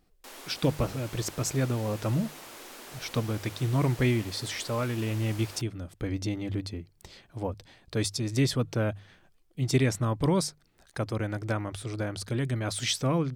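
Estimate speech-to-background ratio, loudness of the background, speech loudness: 14.5 dB, -44.5 LUFS, -30.0 LUFS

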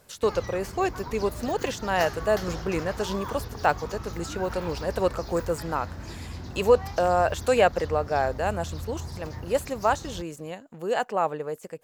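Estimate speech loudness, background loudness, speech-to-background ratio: -27.0 LUFS, -38.0 LUFS, 11.0 dB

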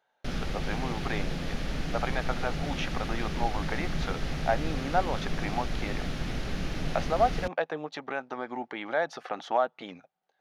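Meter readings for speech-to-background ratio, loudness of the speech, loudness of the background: 2.0 dB, -33.0 LUFS, -35.0 LUFS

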